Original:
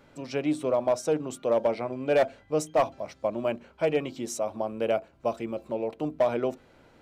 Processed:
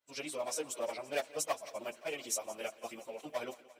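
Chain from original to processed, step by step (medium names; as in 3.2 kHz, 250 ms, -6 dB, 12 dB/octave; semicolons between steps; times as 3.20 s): expander -44 dBFS; tilt EQ +4.5 dB/octave; plain phase-vocoder stretch 0.54×; on a send: thinning echo 173 ms, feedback 71%, high-pass 160 Hz, level -18.5 dB; on the sum: trim -5.5 dB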